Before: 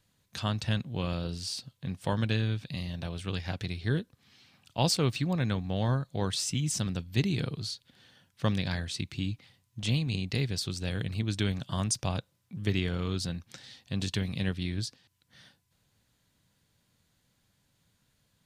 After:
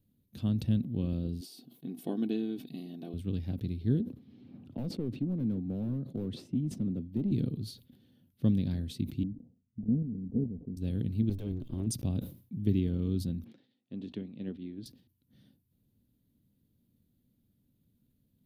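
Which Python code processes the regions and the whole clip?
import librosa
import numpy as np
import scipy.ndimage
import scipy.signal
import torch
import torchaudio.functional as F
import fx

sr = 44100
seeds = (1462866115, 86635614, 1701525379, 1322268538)

y = fx.chain(x, sr, fx.brickwall_highpass(low_hz=150.0),
    fx.peak_eq(hz=720.0, db=6.0, octaves=0.44),
    fx.comb(ms=2.7, depth=0.63), at=(1.41, 3.14))
y = fx.chain(y, sr, fx.bandpass_q(hz=430.0, q=0.55),
    fx.clip_hard(threshold_db=-29.0),
    fx.band_squash(depth_pct=70), at=(4.0, 7.32))
y = fx.chain(y, sr, fx.steep_lowpass(hz=730.0, slope=36),
    fx.comb(ms=4.4, depth=0.52),
    fx.level_steps(step_db=10), at=(9.23, 10.77))
y = fx.chain(y, sr, fx.lower_of_two(delay_ms=1.9),
    fx.high_shelf(hz=4700.0, db=-10.0), at=(11.29, 11.87))
y = fx.chain(y, sr, fx.bandpass_edges(low_hz=290.0, high_hz=2800.0),
    fx.upward_expand(threshold_db=-57.0, expansion=1.5), at=(13.44, 14.86))
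y = fx.curve_eq(y, sr, hz=(170.0, 240.0, 960.0, 1700.0, 3600.0, 5200.0, 7800.0, 12000.0), db=(0, 8, -20, -22, -15, -20, -21, -2))
y = fx.sustainer(y, sr, db_per_s=130.0)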